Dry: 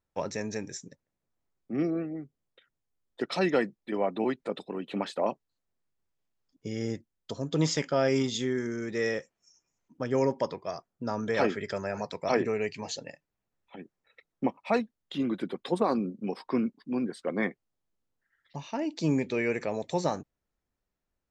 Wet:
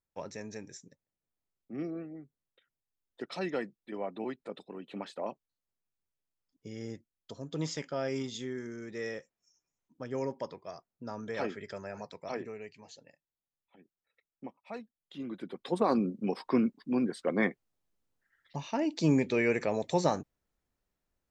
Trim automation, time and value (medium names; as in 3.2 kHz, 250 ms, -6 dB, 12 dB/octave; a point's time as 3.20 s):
12.01 s -8.5 dB
12.81 s -16 dB
14.74 s -16 dB
15.45 s -8 dB
15.97 s +1 dB